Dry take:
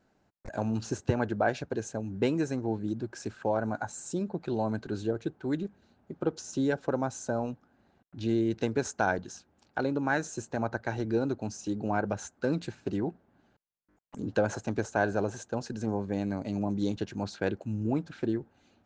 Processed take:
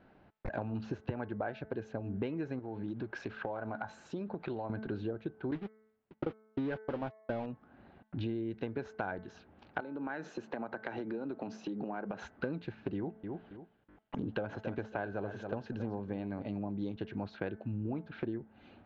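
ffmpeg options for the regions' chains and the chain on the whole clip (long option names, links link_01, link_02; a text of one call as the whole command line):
ffmpeg -i in.wav -filter_complex "[0:a]asettb=1/sr,asplit=3[link_01][link_02][link_03];[link_01]atrim=end=2.594[link_04];[link_02]atrim=start=2.59:end=4.7,asetpts=PTS-STARTPTS,afade=type=in:duration=0.004:curve=qsin,afade=type=out:start_time=2.106:duration=0.004:curve=qsin,lowshelf=frequency=460:gain=-6.5,acompressor=threshold=-37dB:ratio=2.5:attack=3.2:release=140:knee=1:detection=peak[link_05];[link_03]atrim=start=4.696[link_06];[link_04][link_05]acrossfade=duration=0.004:curve1=hsin:curve2=qsin[link_07];[link_07][link_06]acrossfade=duration=0.004:curve1=qsin:curve2=hsin,asettb=1/sr,asplit=3[link_08][link_09][link_10];[link_08]atrim=end=5.514[link_11];[link_09]atrim=start=5.51:end=7.46,asetpts=PTS-STARTPTS,afade=type=in:duration=0.004:curve=qsin,afade=type=out:start_time=1.946:duration=0.004:curve=qsin,aeval=exprs='val(0)+0.5*0.0282*sgn(val(0))':channel_layout=same,agate=range=-59dB:threshold=-29dB:ratio=16:release=100:detection=peak[link_12];[link_10]atrim=start=7.456[link_13];[link_11][link_12]acrossfade=duration=0.004:curve1=hsin:curve2=qsin[link_14];[link_14][link_13]acrossfade=duration=0.004:curve1=qsin:curve2=hsin,asettb=1/sr,asplit=3[link_15][link_16][link_17];[link_15]atrim=end=9.804[link_18];[link_16]atrim=start=9.8:end=12.22,asetpts=PTS-STARTPTS,afade=type=in:duration=0.004:curve=qsin,afade=type=out:start_time=2.416:duration=0.004:curve=qsin,highpass=frequency=170:width=0.5412,highpass=frequency=170:width=1.3066,acompressor=threshold=-39dB:ratio=4:attack=3.2:release=140:knee=1:detection=peak[link_19];[link_17]atrim=start=12.216[link_20];[link_18][link_19]acrossfade=duration=0.004:curve1=hsin:curve2=qsin[link_21];[link_21][link_20]acrossfade=duration=0.004:curve1=qsin:curve2=hsin,asettb=1/sr,asplit=3[link_22][link_23][link_24];[link_22]atrim=end=12.964[link_25];[link_23]atrim=start=12.96:end=16.48,asetpts=PTS-STARTPTS,afade=type=in:duration=0.004:curve=qsin,afade=type=out:start_time=3.516:duration=0.004:curve=qsin,equalizer=frequency=3200:width_type=o:width=0.42:gain=4,aecho=1:1:274|548:0.2|0.0439,atrim=end_sample=155232[link_26];[link_24]atrim=start=16.476[link_27];[link_25][link_26]acrossfade=duration=0.004:curve1=hsin:curve2=qsin[link_28];[link_28][link_27]acrossfade=duration=0.004:curve1=qsin:curve2=hsin,bandreject=frequency=217.5:width_type=h:width=4,bandreject=frequency=435:width_type=h:width=4,bandreject=frequency=652.5:width_type=h:width=4,bandreject=frequency=870:width_type=h:width=4,bandreject=frequency=1087.5:width_type=h:width=4,bandreject=frequency=1305:width_type=h:width=4,bandreject=frequency=1522.5:width_type=h:width=4,bandreject=frequency=1740:width_type=h:width=4,bandreject=frequency=1957.5:width_type=h:width=4,bandreject=frequency=2175:width_type=h:width=4,acompressor=threshold=-43dB:ratio=6,lowpass=frequency=3300:width=0.5412,lowpass=frequency=3300:width=1.3066,volume=8dB" out.wav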